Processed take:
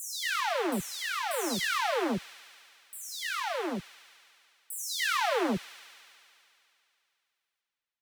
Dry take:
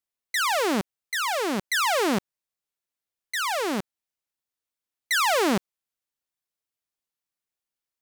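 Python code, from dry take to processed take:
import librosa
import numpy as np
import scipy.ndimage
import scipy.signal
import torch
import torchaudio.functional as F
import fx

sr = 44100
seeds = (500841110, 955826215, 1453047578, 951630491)

y = fx.spec_delay(x, sr, highs='early', ms=404)
y = fx.echo_wet_highpass(y, sr, ms=72, feedback_pct=84, hz=2400.0, wet_db=-12.0)
y = y * librosa.db_to_amplitude(-4.0)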